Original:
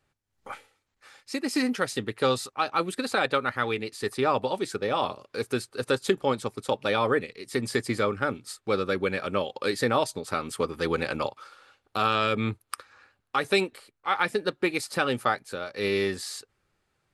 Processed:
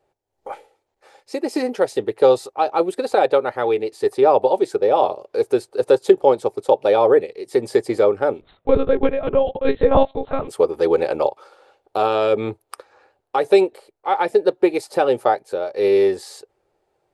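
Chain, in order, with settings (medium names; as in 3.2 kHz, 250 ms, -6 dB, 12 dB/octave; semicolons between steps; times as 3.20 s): high-order bell 550 Hz +15 dB; 8.41–10.48 s: monotone LPC vocoder at 8 kHz 270 Hz; trim -2.5 dB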